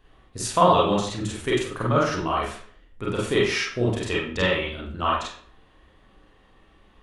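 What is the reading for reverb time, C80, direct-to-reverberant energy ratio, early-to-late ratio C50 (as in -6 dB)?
0.50 s, 6.5 dB, -5.5 dB, 3.0 dB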